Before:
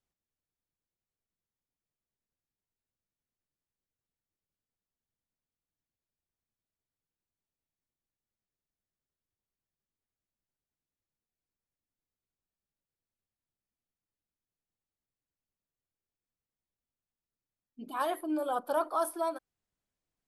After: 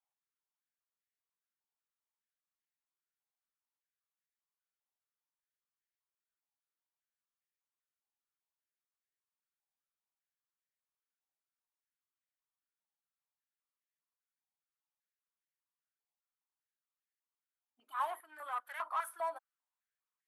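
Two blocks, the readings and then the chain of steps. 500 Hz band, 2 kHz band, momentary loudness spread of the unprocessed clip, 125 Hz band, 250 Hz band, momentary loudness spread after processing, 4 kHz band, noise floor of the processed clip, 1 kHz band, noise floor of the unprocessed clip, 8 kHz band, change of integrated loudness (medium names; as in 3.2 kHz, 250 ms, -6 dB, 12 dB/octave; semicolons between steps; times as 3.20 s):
-13.5 dB, -1.5 dB, 11 LU, no reading, under -30 dB, 7 LU, -8.0 dB, under -85 dBFS, -4.5 dB, under -85 dBFS, -9.0 dB, -7.0 dB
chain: valve stage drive 28 dB, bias 0.3; peaking EQ 4.9 kHz -9 dB 0.34 oct; step-sequenced high-pass 5 Hz 830–1800 Hz; trim -7.5 dB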